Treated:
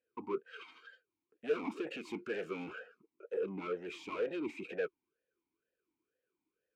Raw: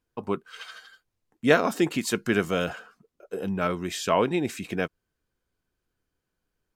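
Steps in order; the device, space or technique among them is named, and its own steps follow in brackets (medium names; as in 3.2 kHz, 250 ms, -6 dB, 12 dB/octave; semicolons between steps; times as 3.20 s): talk box (valve stage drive 31 dB, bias 0.3; talking filter e-u 2.1 Hz); trim +7.5 dB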